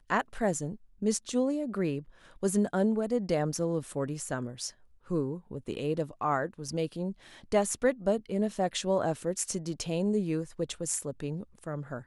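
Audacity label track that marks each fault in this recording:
6.680000	6.680000	drop-out 4.3 ms

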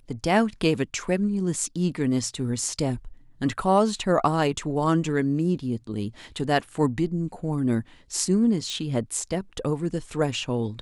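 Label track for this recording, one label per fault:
8.700000	8.700000	click −19 dBFS

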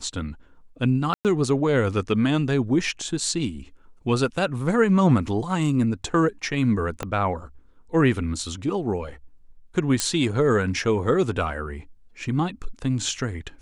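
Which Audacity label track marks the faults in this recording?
1.140000	1.250000	drop-out 108 ms
7.030000	7.030000	click −14 dBFS
10.000000	10.000000	click −6 dBFS

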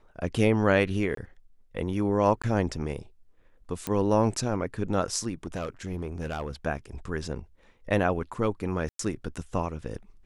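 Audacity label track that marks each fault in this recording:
1.150000	1.170000	drop-out 23 ms
2.420000	2.440000	drop-out 16 ms
3.870000	3.870000	click −15 dBFS
5.460000	6.510000	clipping −27 dBFS
8.890000	8.990000	drop-out 103 ms

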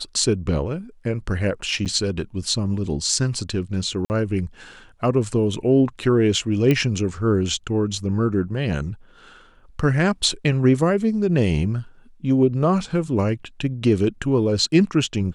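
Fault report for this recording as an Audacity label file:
1.850000	1.860000	drop-out 7.8 ms
4.050000	4.100000	drop-out 49 ms
6.710000	6.710000	click −8 dBFS

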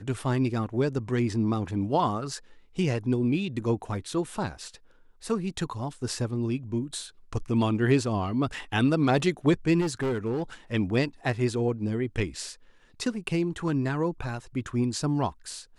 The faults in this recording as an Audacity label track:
9.800000	10.430000	clipping −24 dBFS

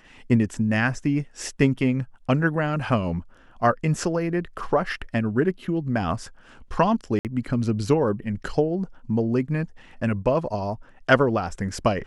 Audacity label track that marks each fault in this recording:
7.190000	7.250000	drop-out 58 ms

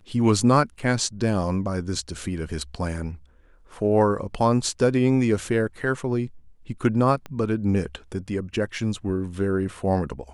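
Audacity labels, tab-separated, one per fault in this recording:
0.790000	0.790000	drop-out 4.6 ms
7.260000	7.260000	click −21 dBFS

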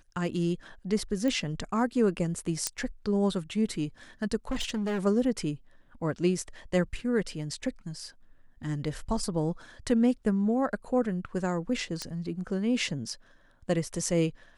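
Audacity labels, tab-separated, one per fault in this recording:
1.280000	1.280000	click −19 dBFS
2.670000	2.670000	click −12 dBFS
4.500000	4.990000	clipping −26.5 dBFS
12.020000	12.020000	click −18 dBFS

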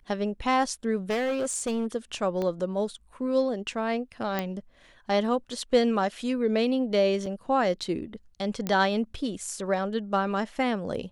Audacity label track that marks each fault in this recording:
1.100000	1.870000	clipping −24 dBFS
2.420000	2.420000	click −19 dBFS
4.390000	4.390000	click −14 dBFS
7.260000	7.260000	drop-out 3 ms
8.670000	8.670000	click −15 dBFS

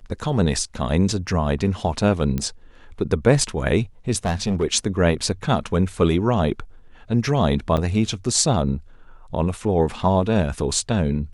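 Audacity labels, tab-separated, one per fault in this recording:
2.380000	2.380000	click −12 dBFS
4.160000	4.640000	clipping −17 dBFS
7.770000	7.780000	drop-out 5.1 ms

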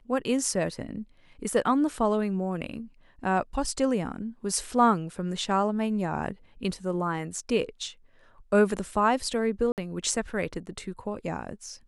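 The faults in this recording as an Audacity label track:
9.720000	9.780000	drop-out 58 ms

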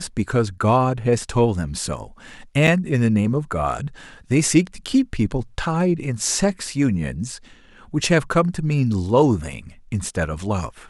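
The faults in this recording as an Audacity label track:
2.670000	2.680000	drop-out 6.2 ms

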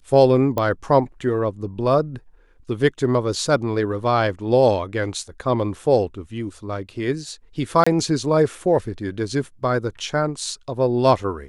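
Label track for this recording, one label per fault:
0.580000	0.580000	click −10 dBFS
7.840000	7.870000	drop-out 25 ms

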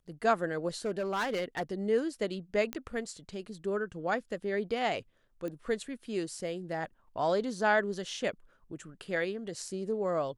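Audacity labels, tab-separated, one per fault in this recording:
0.850000	1.630000	clipping −27.5 dBFS
2.730000	2.730000	click −18 dBFS
5.480000	5.480000	click −27 dBFS

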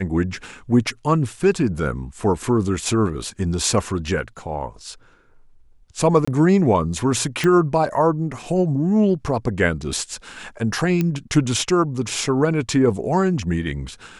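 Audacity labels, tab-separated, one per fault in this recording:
6.250000	6.280000	drop-out 25 ms
7.440000	7.440000	click −8 dBFS
11.010000	11.010000	click −9 dBFS

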